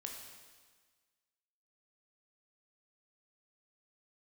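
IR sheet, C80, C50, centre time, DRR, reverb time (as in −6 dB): 5.0 dB, 3.5 dB, 53 ms, 1.0 dB, 1.5 s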